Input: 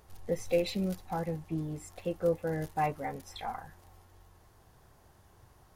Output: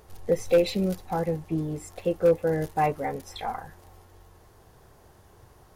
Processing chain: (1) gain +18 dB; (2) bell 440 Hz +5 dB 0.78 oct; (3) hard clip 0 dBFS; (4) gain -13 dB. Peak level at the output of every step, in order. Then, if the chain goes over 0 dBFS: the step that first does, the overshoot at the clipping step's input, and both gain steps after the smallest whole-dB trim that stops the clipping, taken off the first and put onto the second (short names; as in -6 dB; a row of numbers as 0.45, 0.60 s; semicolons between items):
+1.0, +4.0, 0.0, -13.0 dBFS; step 1, 4.0 dB; step 1 +14 dB, step 4 -9 dB